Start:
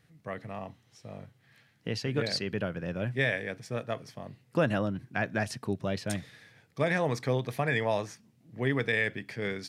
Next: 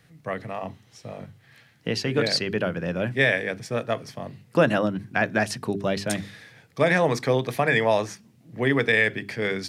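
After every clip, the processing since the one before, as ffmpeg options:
ffmpeg -i in.wav -filter_complex "[0:a]bandreject=frequency=50:width_type=h:width=6,bandreject=frequency=100:width_type=h:width=6,bandreject=frequency=150:width_type=h:width=6,bandreject=frequency=200:width_type=h:width=6,bandreject=frequency=250:width_type=h:width=6,bandreject=frequency=300:width_type=h:width=6,bandreject=frequency=350:width_type=h:width=6,bandreject=frequency=400:width_type=h:width=6,acrossover=split=140[link_01][link_02];[link_01]acompressor=threshold=-48dB:ratio=6[link_03];[link_03][link_02]amix=inputs=2:normalize=0,volume=8dB" out.wav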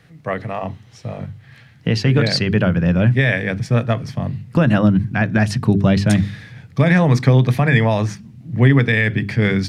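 ffmpeg -i in.wav -af "highshelf=frequency=6400:gain=-10,alimiter=limit=-13.5dB:level=0:latency=1:release=171,asubboost=boost=6:cutoff=180,volume=7.5dB" out.wav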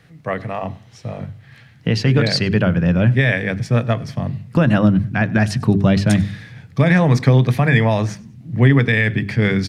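ffmpeg -i in.wav -af "aecho=1:1:99|198:0.0708|0.0234" out.wav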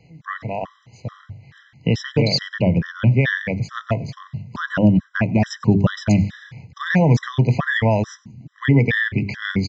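ffmpeg -i in.wav -af "aresample=16000,aresample=44100,afftfilt=real='re*gt(sin(2*PI*2.3*pts/sr)*(1-2*mod(floor(b*sr/1024/1000),2)),0)':imag='im*gt(sin(2*PI*2.3*pts/sr)*(1-2*mod(floor(b*sr/1024/1000),2)),0)':win_size=1024:overlap=0.75" out.wav

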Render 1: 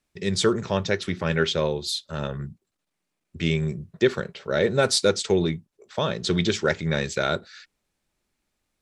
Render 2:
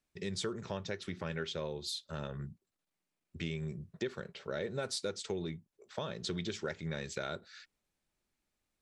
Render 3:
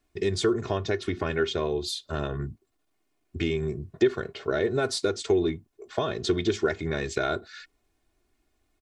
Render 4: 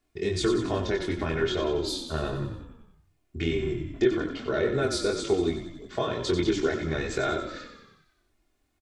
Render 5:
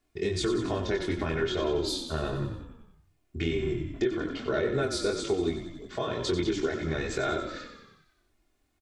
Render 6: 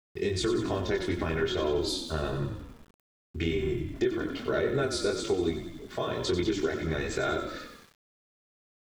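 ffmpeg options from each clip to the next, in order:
ffmpeg -i in.wav -af "acompressor=threshold=-29dB:ratio=3,volume=-7.5dB" out.wav
ffmpeg -i in.wav -af "tiltshelf=frequency=1400:gain=4,aecho=1:1:2.8:0.71,volume=8.5dB" out.wav
ffmpeg -i in.wav -filter_complex "[0:a]flanger=delay=22.5:depth=3.1:speed=2.5,asplit=8[link_01][link_02][link_03][link_04][link_05][link_06][link_07][link_08];[link_02]adelay=92,afreqshift=-33,volume=-8dB[link_09];[link_03]adelay=184,afreqshift=-66,volume=-12.6dB[link_10];[link_04]adelay=276,afreqshift=-99,volume=-17.2dB[link_11];[link_05]adelay=368,afreqshift=-132,volume=-21.7dB[link_12];[link_06]adelay=460,afreqshift=-165,volume=-26.3dB[link_13];[link_07]adelay=552,afreqshift=-198,volume=-30.9dB[link_14];[link_08]adelay=644,afreqshift=-231,volume=-35.5dB[link_15];[link_01][link_09][link_10][link_11][link_12][link_13][link_14][link_15]amix=inputs=8:normalize=0,volume=2dB" out.wav
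ffmpeg -i in.wav -af "alimiter=limit=-17.5dB:level=0:latency=1:release=268" out.wav
ffmpeg -i in.wav -af "aeval=exprs='val(0)*gte(abs(val(0)),0.00266)':channel_layout=same" out.wav

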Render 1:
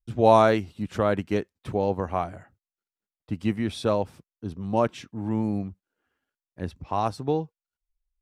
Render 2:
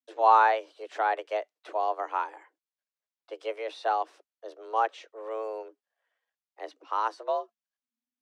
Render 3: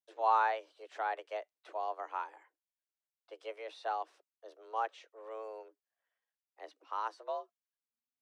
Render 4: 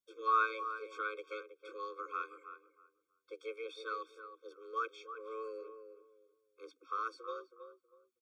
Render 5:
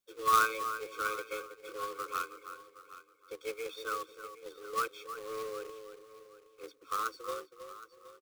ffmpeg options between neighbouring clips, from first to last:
ffmpeg -i in.wav -filter_complex "[0:a]acrossover=split=270 7700:gain=0.126 1 0.126[link_01][link_02][link_03];[link_01][link_02][link_03]amix=inputs=3:normalize=0,afreqshift=220,acrossover=split=3100[link_04][link_05];[link_05]acompressor=threshold=-48dB:ratio=4:attack=1:release=60[link_06];[link_04][link_06]amix=inputs=2:normalize=0,volume=-2dB" out.wav
ffmpeg -i in.wav -af "lowshelf=frequency=260:gain=-9.5,volume=-8dB" out.wav
ffmpeg -i in.wav -filter_complex "[0:a]asplit=2[link_01][link_02];[link_02]adelay=321,lowpass=frequency=1300:poles=1,volume=-8.5dB,asplit=2[link_03][link_04];[link_04]adelay=321,lowpass=frequency=1300:poles=1,volume=0.25,asplit=2[link_05][link_06];[link_06]adelay=321,lowpass=frequency=1300:poles=1,volume=0.25[link_07];[link_01][link_03][link_05][link_07]amix=inputs=4:normalize=0,afftfilt=real='re*eq(mod(floor(b*sr/1024/530),2),0)':imag='im*eq(mod(floor(b*sr/1024/530),2),0)':win_size=1024:overlap=0.75,volume=4dB" out.wav
ffmpeg -i in.wav -af "acrusher=bits=2:mode=log:mix=0:aa=0.000001,aecho=1:1:768|1536:0.158|0.0269,volume=3.5dB" out.wav

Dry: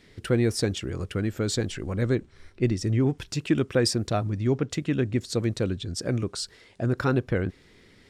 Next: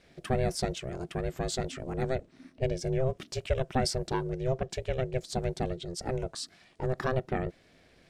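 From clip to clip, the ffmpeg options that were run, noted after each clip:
ffmpeg -i in.wav -af "aeval=exprs='val(0)*sin(2*PI*260*n/s)':channel_layout=same,volume=-2.5dB" out.wav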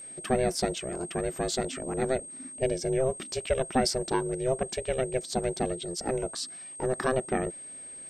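ffmpeg -i in.wav -af "aeval=exprs='val(0)+0.00631*sin(2*PI*8400*n/s)':channel_layout=same,lowshelf=frequency=170:width_type=q:width=1.5:gain=-7,volume=3dB" out.wav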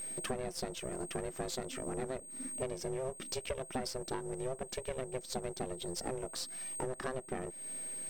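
ffmpeg -i in.wav -af "aeval=exprs='if(lt(val(0),0),0.447*val(0),val(0))':channel_layout=same,acompressor=threshold=-40dB:ratio=6,volume=4.5dB" out.wav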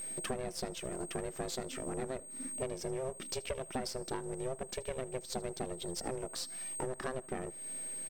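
ffmpeg -i in.wav -af "aecho=1:1:78|156|234:0.0631|0.0265|0.0111" out.wav

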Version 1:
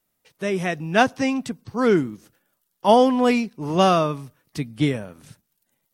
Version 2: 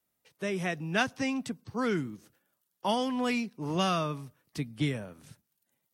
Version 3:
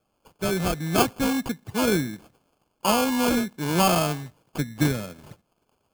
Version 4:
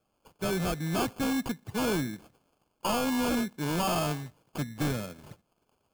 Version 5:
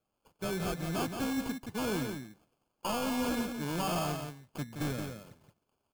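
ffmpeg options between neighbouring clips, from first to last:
ffmpeg -i in.wav -filter_complex "[0:a]highpass=46,acrossover=split=200|1200|4000[link_01][link_02][link_03][link_04];[link_02]acompressor=threshold=-25dB:ratio=6[link_05];[link_01][link_05][link_03][link_04]amix=inputs=4:normalize=0,volume=-6dB" out.wav
ffmpeg -i in.wav -af "equalizer=frequency=9000:width_type=o:width=0.77:gain=3,acrusher=samples=23:mix=1:aa=0.000001,highshelf=frequency=6800:gain=4.5,volume=7dB" out.wav
ffmpeg -i in.wav -af "volume=22dB,asoftclip=hard,volume=-22dB,volume=-3dB" out.wav
ffmpeg -i in.wav -filter_complex "[0:a]asplit=2[link_01][link_02];[link_02]acrusher=bits=4:mix=0:aa=0.5,volume=-10.5dB[link_03];[link_01][link_03]amix=inputs=2:normalize=0,aecho=1:1:173:0.473,volume=-7.5dB" out.wav

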